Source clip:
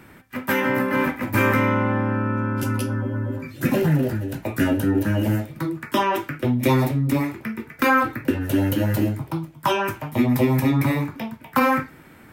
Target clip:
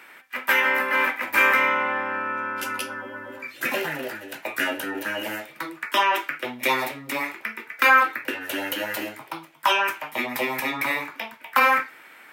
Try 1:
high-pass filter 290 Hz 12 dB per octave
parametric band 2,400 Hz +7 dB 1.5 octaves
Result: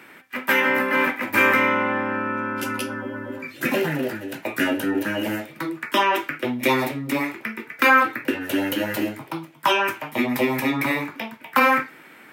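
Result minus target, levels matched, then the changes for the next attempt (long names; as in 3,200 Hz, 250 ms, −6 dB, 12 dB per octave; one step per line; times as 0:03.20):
250 Hz band +9.5 dB
change: high-pass filter 620 Hz 12 dB per octave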